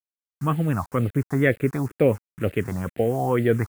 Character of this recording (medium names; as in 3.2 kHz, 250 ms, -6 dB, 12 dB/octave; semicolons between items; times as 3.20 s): a quantiser's noise floor 8-bit, dither none; phasing stages 4, 2.1 Hz, lowest notch 460–1000 Hz